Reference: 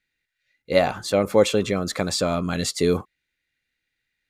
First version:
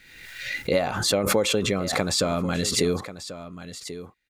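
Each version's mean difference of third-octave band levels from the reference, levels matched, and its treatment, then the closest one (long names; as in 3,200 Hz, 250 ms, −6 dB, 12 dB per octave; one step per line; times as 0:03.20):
5.5 dB: downward compressor, threshold −19 dBFS, peak gain reduction 8 dB
on a send: single-tap delay 1,088 ms −13.5 dB
on the sum: background raised ahead of every attack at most 47 dB per second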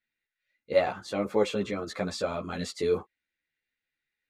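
3.5 dB: low-pass filter 2,700 Hz 6 dB per octave
low-shelf EQ 130 Hz −9.5 dB
string-ensemble chorus
level −2.5 dB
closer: second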